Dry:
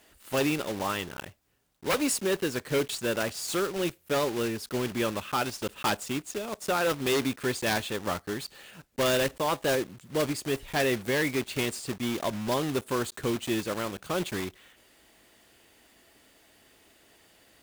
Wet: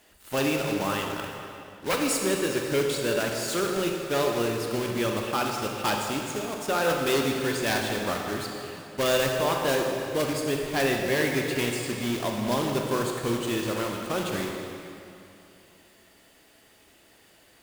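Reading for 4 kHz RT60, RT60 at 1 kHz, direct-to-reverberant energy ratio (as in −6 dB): 2.3 s, 2.8 s, 1.0 dB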